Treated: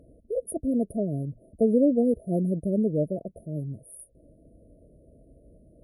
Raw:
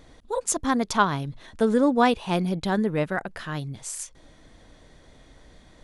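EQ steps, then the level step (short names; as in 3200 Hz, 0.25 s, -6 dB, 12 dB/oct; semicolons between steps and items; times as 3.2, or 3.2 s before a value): HPF 41 Hz; brick-wall FIR band-stop 690–9200 Hz; high shelf 9600 Hz -11.5 dB; 0.0 dB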